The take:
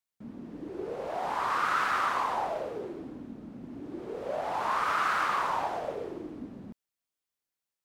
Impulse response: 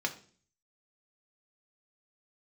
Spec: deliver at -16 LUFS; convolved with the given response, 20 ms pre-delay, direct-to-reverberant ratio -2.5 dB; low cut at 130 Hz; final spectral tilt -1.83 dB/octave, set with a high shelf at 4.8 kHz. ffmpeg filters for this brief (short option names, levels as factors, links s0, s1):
-filter_complex "[0:a]highpass=130,highshelf=f=4800:g=-6.5,asplit=2[s0][s1];[1:a]atrim=start_sample=2205,adelay=20[s2];[s1][s2]afir=irnorm=-1:irlink=0,volume=0.75[s3];[s0][s3]amix=inputs=2:normalize=0,volume=3.76"